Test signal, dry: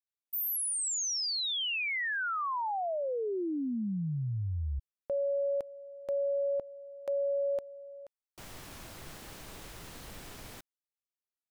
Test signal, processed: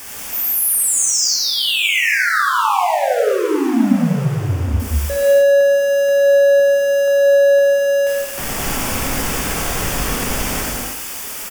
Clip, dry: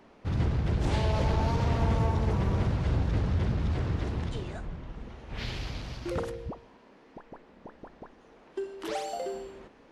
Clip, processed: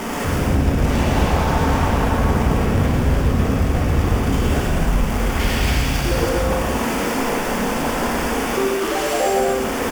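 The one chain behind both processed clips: zero-crossing step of -34 dBFS; bell 4000 Hz -15 dB 0.2 oct; in parallel at +2.5 dB: compressor, threshold -33 dBFS; on the sum: sine folder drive 7 dB, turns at -13.5 dBFS; on a send: echo 0.111 s -9 dB; on the sum: non-linear reverb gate 0.35 s flat, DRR -5 dB; gain -7 dB

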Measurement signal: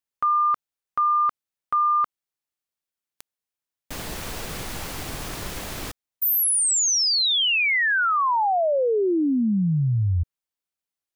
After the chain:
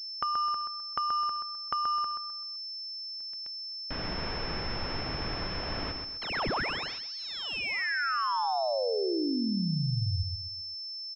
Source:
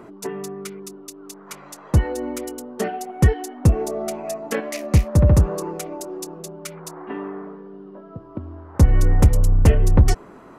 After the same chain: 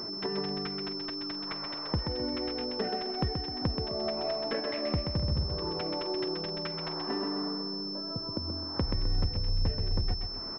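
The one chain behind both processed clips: compressor 6:1, threshold -29 dBFS; feedback echo 0.129 s, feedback 36%, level -5.5 dB; pulse-width modulation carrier 5300 Hz; gain -1 dB

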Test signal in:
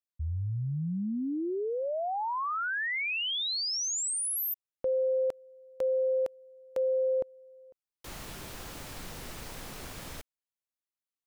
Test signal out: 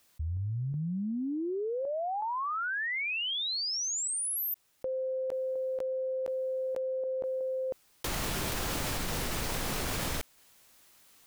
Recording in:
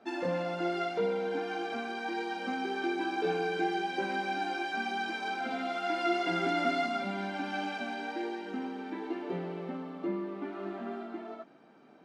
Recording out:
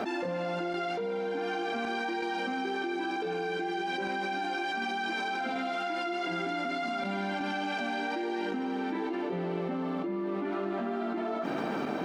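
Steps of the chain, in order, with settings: random-step tremolo 2.7 Hz, depth 70%; fast leveller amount 100%; gain -5.5 dB

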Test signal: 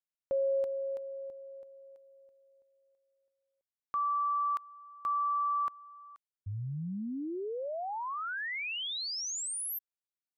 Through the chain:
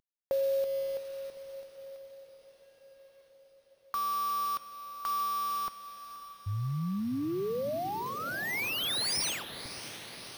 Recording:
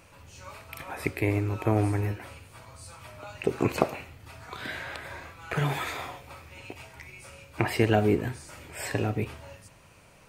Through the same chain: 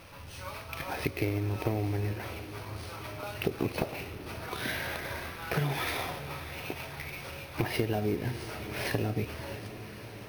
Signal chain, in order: CVSD 32 kbps; dynamic EQ 1200 Hz, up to -5 dB, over -45 dBFS, Q 1.2; compressor 6:1, threshold -31 dBFS; on a send: diffused feedback echo 0.61 s, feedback 70%, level -13 dB; on the sum: careless resampling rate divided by 3×, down filtered, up hold; gain +4.5 dB

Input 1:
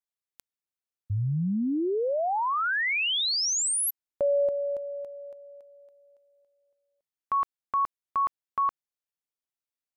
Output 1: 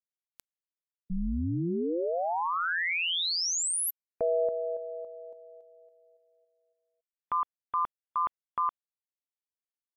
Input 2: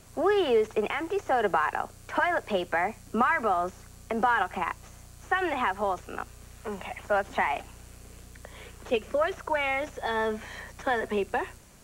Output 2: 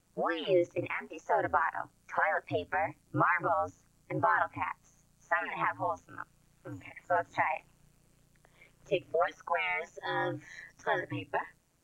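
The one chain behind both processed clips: spectral noise reduction 15 dB; ring modulator 86 Hz

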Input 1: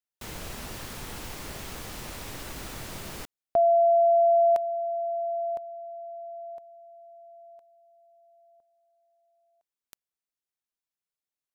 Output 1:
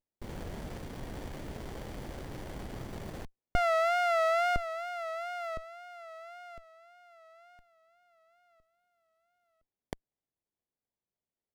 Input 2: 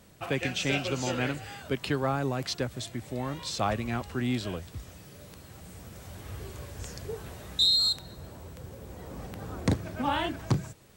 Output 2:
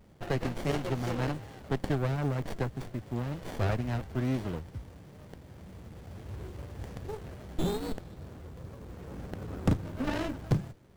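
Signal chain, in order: wow and flutter 81 cents; running maximum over 33 samples

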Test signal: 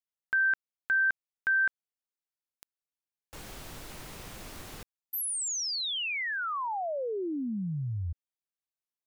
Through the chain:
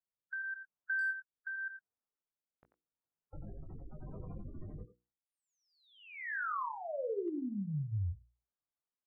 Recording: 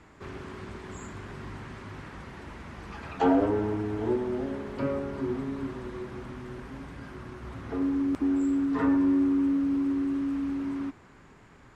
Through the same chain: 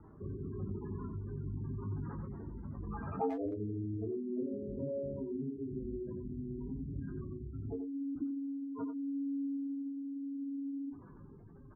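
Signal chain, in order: spectral gate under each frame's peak -10 dB strong; LPF 1400 Hz 24 dB/oct; bell 130 Hz +3.5 dB 1.2 oct; notches 60/120/180/240/300/360/420/480 Hz; compressor 3:1, threshold -39 dBFS; rotary speaker horn 0.9 Hz; doubler 20 ms -7.5 dB; speakerphone echo 90 ms, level -8 dB; gain +3 dB

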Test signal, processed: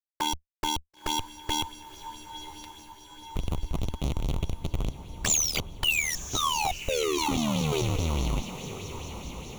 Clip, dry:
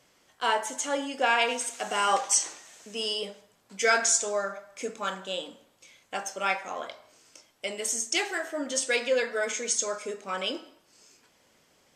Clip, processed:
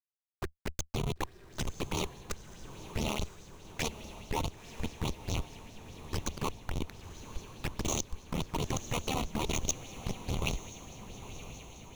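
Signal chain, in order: cycle switcher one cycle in 2, inverted; ripple EQ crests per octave 0.76, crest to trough 17 dB; in parallel at 0 dB: compressor 8:1, threshold -35 dBFS; on the sum: flipped gate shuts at -10 dBFS, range -26 dB; Schmitt trigger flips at -20 dBFS; envelope flanger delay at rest 5.4 ms, full sweep at -28.5 dBFS; AM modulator 77 Hz, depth 60%; dynamic EQ 5100 Hz, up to +4 dB, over -49 dBFS, Q 1; on a send: diffused feedback echo 0.995 s, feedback 61%, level -12 dB; on the sum: LFO bell 4.8 Hz 1000–5700 Hz +8 dB; gain +1.5 dB

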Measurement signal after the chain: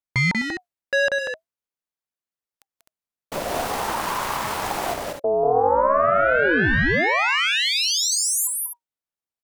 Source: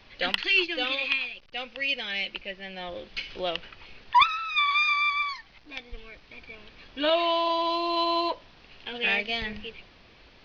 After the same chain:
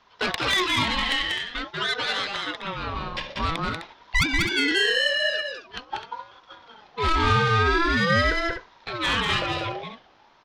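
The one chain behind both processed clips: gate -41 dBFS, range -10 dB; tilt shelf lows +3.5 dB, about 1300 Hz; tube stage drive 22 dB, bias 0.3; on a send: loudspeakers at several distances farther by 65 m -3 dB, 88 m -9 dB; on the sum: ring modulator with a swept carrier 780 Hz, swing 30%, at 0.47 Hz; gain +7.5 dB

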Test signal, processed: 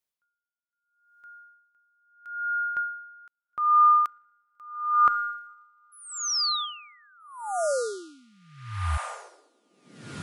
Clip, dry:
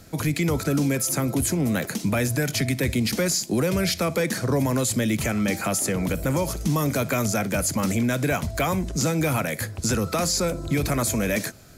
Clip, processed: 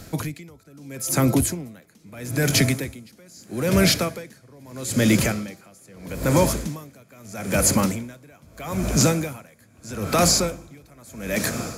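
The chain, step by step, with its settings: on a send: diffused feedback echo 1.726 s, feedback 45%, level -11 dB; on the sum: dB-linear tremolo 0.78 Hz, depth 33 dB; gain +6.5 dB

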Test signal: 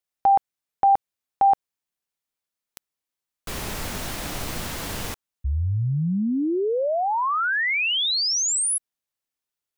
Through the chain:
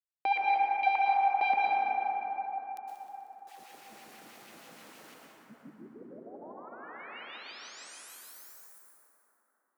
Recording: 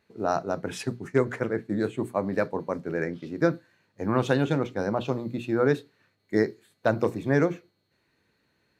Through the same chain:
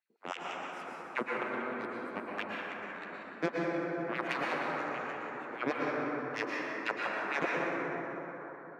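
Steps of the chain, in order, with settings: added harmonics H 2 -25 dB, 3 -12 dB, 7 -25 dB, 8 -35 dB, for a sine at -7.5 dBFS; multi-head echo 62 ms, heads second and third, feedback 55%, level -12.5 dB; LFO high-pass sine 6.3 Hz 210–2700 Hz; plate-style reverb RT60 4.4 s, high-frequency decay 0.25×, pre-delay 0.1 s, DRR -4 dB; gain -7.5 dB

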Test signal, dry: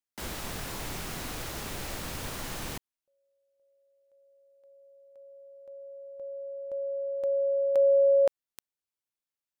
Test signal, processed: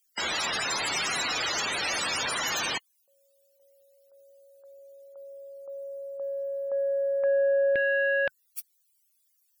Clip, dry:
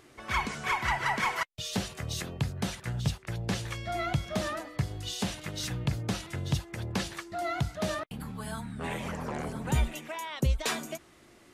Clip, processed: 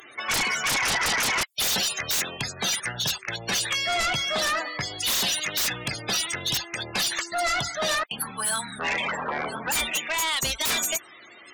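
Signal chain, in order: loudest bins only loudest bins 64; differentiator; sine folder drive 16 dB, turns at -29.5 dBFS; gain +8.5 dB

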